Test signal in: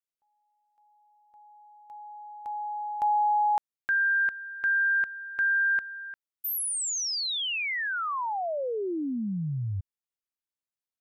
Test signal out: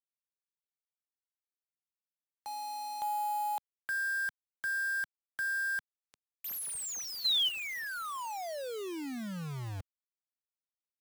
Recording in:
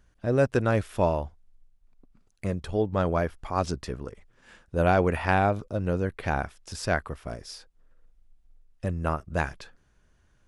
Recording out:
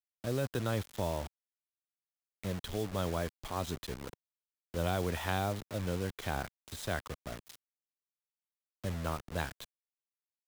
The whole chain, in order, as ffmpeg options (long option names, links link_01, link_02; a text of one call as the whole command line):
ffmpeg -i in.wav -filter_complex "[0:a]superequalizer=13b=3.16:14b=0.501,acrusher=bits=5:mix=0:aa=0.000001,acrossover=split=150|3000[link_01][link_02][link_03];[link_02]acompressor=threshold=-24dB:ratio=6:attack=4.2:release=42:knee=2.83:detection=peak[link_04];[link_01][link_04][link_03]amix=inputs=3:normalize=0,volume=-7.5dB" out.wav